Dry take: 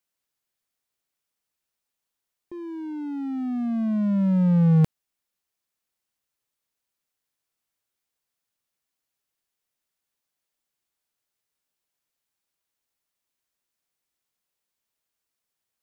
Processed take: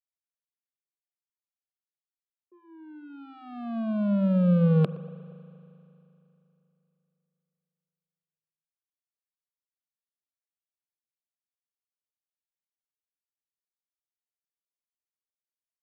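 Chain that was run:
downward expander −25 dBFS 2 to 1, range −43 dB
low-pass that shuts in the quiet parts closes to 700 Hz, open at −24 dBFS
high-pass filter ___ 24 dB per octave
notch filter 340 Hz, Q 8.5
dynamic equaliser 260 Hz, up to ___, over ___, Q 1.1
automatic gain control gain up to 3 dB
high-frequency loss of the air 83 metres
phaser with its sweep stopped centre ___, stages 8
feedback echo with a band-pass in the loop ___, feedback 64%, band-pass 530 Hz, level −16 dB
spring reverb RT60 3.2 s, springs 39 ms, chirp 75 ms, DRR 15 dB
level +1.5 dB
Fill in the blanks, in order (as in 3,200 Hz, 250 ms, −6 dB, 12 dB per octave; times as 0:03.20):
180 Hz, +5 dB, −35 dBFS, 1,300 Hz, 118 ms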